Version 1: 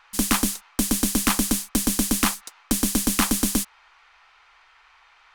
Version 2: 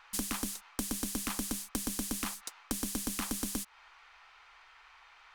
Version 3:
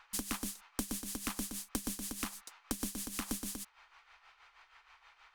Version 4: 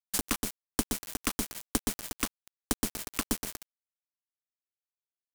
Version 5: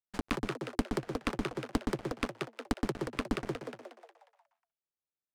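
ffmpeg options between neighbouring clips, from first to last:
ffmpeg -i in.wav -af "alimiter=limit=-13dB:level=0:latency=1:release=240,acompressor=threshold=-29dB:ratio=6,volume=-2.5dB" out.wav
ffmpeg -i in.wav -af "tremolo=f=6.3:d=0.66,volume=-1dB" out.wav
ffmpeg -i in.wav -af "aeval=exprs='val(0)*gte(abs(val(0)),0.02)':channel_layout=same,volume=8.5dB" out.wav
ffmpeg -i in.wav -filter_complex "[0:a]adynamicsmooth=sensitivity=1.5:basefreq=1300,asplit=7[link_01][link_02][link_03][link_04][link_05][link_06][link_07];[link_02]adelay=180,afreqshift=110,volume=-3.5dB[link_08];[link_03]adelay=360,afreqshift=220,volume=-10.2dB[link_09];[link_04]adelay=540,afreqshift=330,volume=-17dB[link_10];[link_05]adelay=720,afreqshift=440,volume=-23.7dB[link_11];[link_06]adelay=900,afreqshift=550,volume=-30.5dB[link_12];[link_07]adelay=1080,afreqshift=660,volume=-37.2dB[link_13];[link_01][link_08][link_09][link_10][link_11][link_12][link_13]amix=inputs=7:normalize=0" out.wav

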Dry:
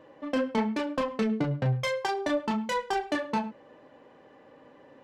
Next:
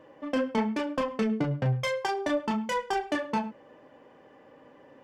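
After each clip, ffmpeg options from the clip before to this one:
ffmpeg -i in.wav -af "bandreject=frequency=4000:width=9.5" out.wav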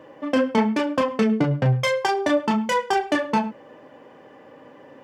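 ffmpeg -i in.wav -af "highpass=75,volume=7.5dB" out.wav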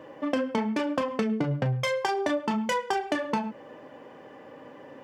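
ffmpeg -i in.wav -af "acompressor=threshold=-24dB:ratio=6" out.wav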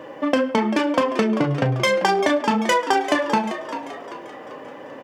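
ffmpeg -i in.wav -filter_complex "[0:a]lowshelf=frequency=210:gain=-6,asplit=2[link_01][link_02];[link_02]asplit=5[link_03][link_04][link_05][link_06][link_07];[link_03]adelay=391,afreqshift=61,volume=-11dB[link_08];[link_04]adelay=782,afreqshift=122,volume=-17.7dB[link_09];[link_05]adelay=1173,afreqshift=183,volume=-24.5dB[link_10];[link_06]adelay=1564,afreqshift=244,volume=-31.2dB[link_11];[link_07]adelay=1955,afreqshift=305,volume=-38dB[link_12];[link_08][link_09][link_10][link_11][link_12]amix=inputs=5:normalize=0[link_13];[link_01][link_13]amix=inputs=2:normalize=0,volume=9dB" out.wav

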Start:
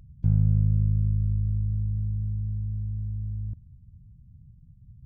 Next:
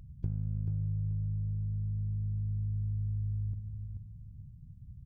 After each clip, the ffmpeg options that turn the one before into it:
ffmpeg -i in.wav -af "acompressor=threshold=-30dB:ratio=12,aecho=1:1:435|870|1305:0.447|0.125|0.035" out.wav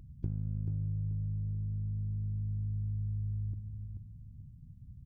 ffmpeg -i in.wav -af "equalizer=frequency=300:width=1.7:gain=8,volume=-2dB" out.wav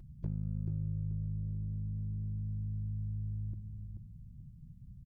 ffmpeg -i in.wav -af "aecho=1:1:5.6:0.36,volume=26.5dB,asoftclip=hard,volume=-26.5dB" out.wav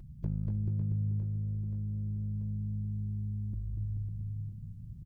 ffmpeg -i in.wav -af "aecho=1:1:240|552|957.6|1485|2170:0.631|0.398|0.251|0.158|0.1,volume=3dB" out.wav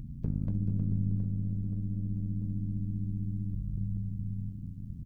ffmpeg -i in.wav -filter_complex "[0:a]acrossover=split=260[link_01][link_02];[link_01]acompressor=mode=upward:threshold=-36dB:ratio=2.5[link_03];[link_03][link_02]amix=inputs=2:normalize=0,tremolo=f=89:d=0.947,volume=6dB" out.wav

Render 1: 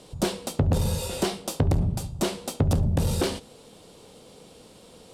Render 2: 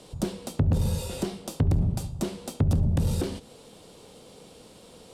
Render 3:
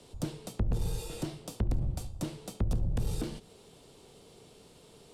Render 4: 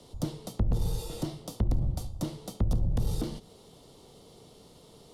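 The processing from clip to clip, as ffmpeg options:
ffmpeg -i in.wav -filter_complex "[0:a]acrossover=split=340[link_01][link_02];[link_02]acompressor=threshold=-35dB:ratio=10[link_03];[link_01][link_03]amix=inputs=2:normalize=0" out.wav
ffmpeg -i in.wav -af "afreqshift=-46,volume=-6dB" out.wav
ffmpeg -i in.wav -af "equalizer=frequency=400:width_type=o:width=0.33:gain=-3,equalizer=frequency=1600:width_type=o:width=0.33:gain=-8,equalizer=frequency=2500:width_type=o:width=0.33:gain=-9,equalizer=frequency=8000:width_type=o:width=0.33:gain=-6,volume=3dB" out.wav

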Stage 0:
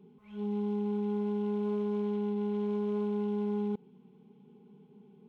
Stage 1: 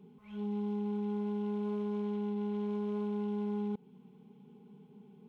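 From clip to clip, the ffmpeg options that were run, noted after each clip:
ffmpeg -i in.wav -filter_complex "[0:a]equalizer=frequency=360:width=2.3:gain=-4,asplit=2[link_01][link_02];[link_02]acompressor=threshold=-41dB:ratio=6,volume=0.5dB[link_03];[link_01][link_03]amix=inputs=2:normalize=0,volume=-4.5dB" out.wav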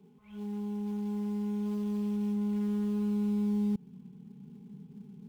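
ffmpeg -i in.wav -filter_complex "[0:a]asubboost=boost=8:cutoff=200,acrossover=split=290|1700[link_01][link_02][link_03];[link_02]acrusher=bits=4:mode=log:mix=0:aa=0.000001[link_04];[link_01][link_04][link_03]amix=inputs=3:normalize=0,volume=-2.5dB" out.wav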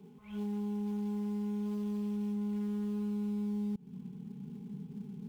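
ffmpeg -i in.wav -af "acompressor=threshold=-38dB:ratio=6,volume=4.5dB" out.wav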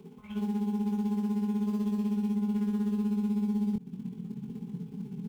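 ffmpeg -i in.wav -filter_complex "[0:a]tremolo=f=16:d=0.78,asplit=2[link_01][link_02];[link_02]adelay=23,volume=-5dB[link_03];[link_01][link_03]amix=inputs=2:normalize=0,volume=8dB" out.wav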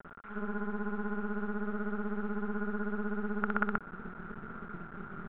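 ffmpeg -i in.wav -af "aresample=8000,acrusher=bits=5:dc=4:mix=0:aa=0.000001,aresample=44100,lowpass=frequency=1400:width_type=q:width=13,volume=-3dB" out.wav

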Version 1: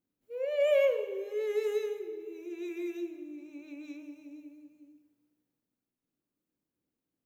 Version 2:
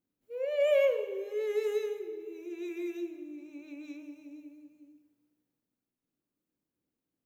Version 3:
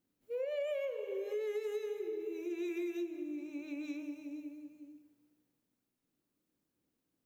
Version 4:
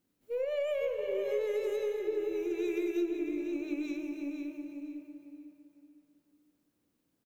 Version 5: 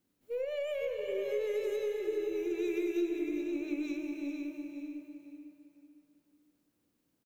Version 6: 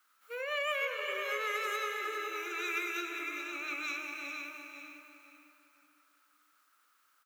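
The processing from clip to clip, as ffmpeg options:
ffmpeg -i in.wav -af anull out.wav
ffmpeg -i in.wav -af "acompressor=threshold=-38dB:ratio=12,volume=3.5dB" out.wav
ffmpeg -i in.wav -filter_complex "[0:a]asplit=2[link_01][link_02];[link_02]adelay=505,lowpass=frequency=2700:poles=1,volume=-4dB,asplit=2[link_03][link_04];[link_04]adelay=505,lowpass=frequency=2700:poles=1,volume=0.32,asplit=2[link_05][link_06];[link_06]adelay=505,lowpass=frequency=2700:poles=1,volume=0.32,asplit=2[link_07][link_08];[link_08]adelay=505,lowpass=frequency=2700:poles=1,volume=0.32[link_09];[link_01][link_03][link_05][link_07][link_09]amix=inputs=5:normalize=0,aeval=exprs='0.0501*(cos(1*acos(clip(val(0)/0.0501,-1,1)))-cos(1*PI/2))+0.000708*(cos(6*acos(clip(val(0)/0.0501,-1,1)))-cos(6*PI/2))':channel_layout=same,volume=4dB" out.wav
ffmpeg -i in.wav -filter_complex "[0:a]acrossover=split=630|1300[link_01][link_02][link_03];[link_02]acompressor=threshold=-53dB:ratio=6[link_04];[link_03]aecho=1:1:407:0.422[link_05];[link_01][link_04][link_05]amix=inputs=3:normalize=0" out.wav
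ffmpeg -i in.wav -af "highpass=frequency=1300:width_type=q:width=8.4,volume=9dB" out.wav

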